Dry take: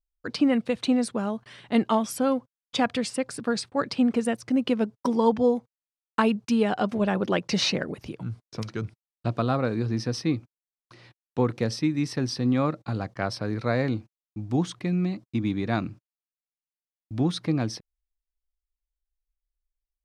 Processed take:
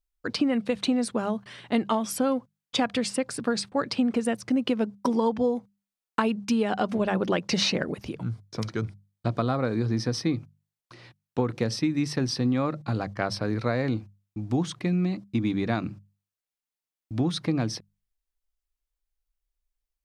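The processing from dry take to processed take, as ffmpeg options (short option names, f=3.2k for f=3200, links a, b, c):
-filter_complex "[0:a]asettb=1/sr,asplit=3[a][b][c];[a]atrim=end=8.254[d];[b]atrim=start=8.25:end=10.36,asetpts=PTS-STARTPTS,afade=t=in:d=0.004:c=qsin,afade=t=out:st=2.106:d=0.004:c=qsin,bandreject=f=2.7k:w=9.2[e];[c]atrim=start=10.356[f];[d][e]acrossfade=d=0.004:c1=hsin:c2=qsin[g];[g][f]acrossfade=d=0.004:c1=qsin:c2=hsin,bandreject=f=50:t=h:w=6,bandreject=f=100:t=h:w=6,bandreject=f=150:t=h:w=6,bandreject=f=200:t=h:w=6,acompressor=threshold=-23dB:ratio=6,volume=2.5dB"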